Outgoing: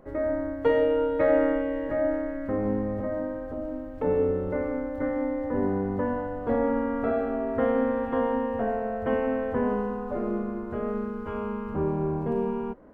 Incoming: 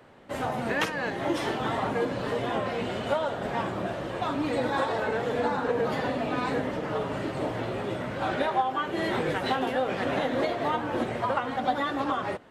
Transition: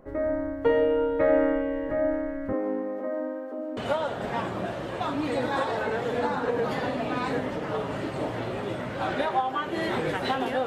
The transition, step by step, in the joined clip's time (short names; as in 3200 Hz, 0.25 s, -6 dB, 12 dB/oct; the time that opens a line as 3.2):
outgoing
2.53–3.77 steep high-pass 250 Hz 48 dB/oct
3.77 switch to incoming from 2.98 s